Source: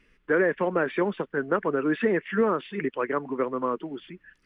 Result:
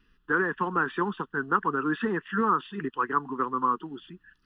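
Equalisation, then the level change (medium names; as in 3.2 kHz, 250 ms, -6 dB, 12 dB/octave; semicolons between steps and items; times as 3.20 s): dynamic bell 1.1 kHz, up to +7 dB, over -41 dBFS, Q 1.4; static phaser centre 2.2 kHz, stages 6; 0.0 dB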